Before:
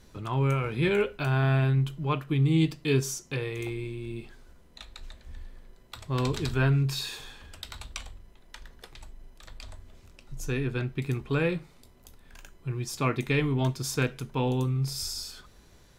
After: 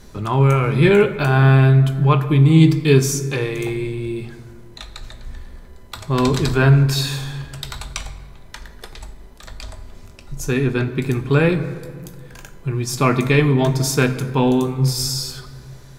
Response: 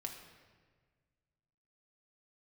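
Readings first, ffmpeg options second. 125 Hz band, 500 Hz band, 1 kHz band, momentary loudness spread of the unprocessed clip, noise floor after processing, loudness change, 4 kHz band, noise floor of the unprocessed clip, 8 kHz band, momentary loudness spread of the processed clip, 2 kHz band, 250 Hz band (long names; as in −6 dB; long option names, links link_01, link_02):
+11.5 dB, +12.0 dB, +11.5 dB, 22 LU, −41 dBFS, +11.5 dB, +9.5 dB, −56 dBFS, +11.0 dB, 18 LU, +10.0 dB, +12.0 dB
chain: -filter_complex "[0:a]asplit=2[link_01][link_02];[link_02]equalizer=frequency=2900:width=2.6:gain=-10[link_03];[1:a]atrim=start_sample=2205,asetrate=38808,aresample=44100[link_04];[link_03][link_04]afir=irnorm=-1:irlink=0,volume=2.5dB[link_05];[link_01][link_05]amix=inputs=2:normalize=0,volume=5.5dB"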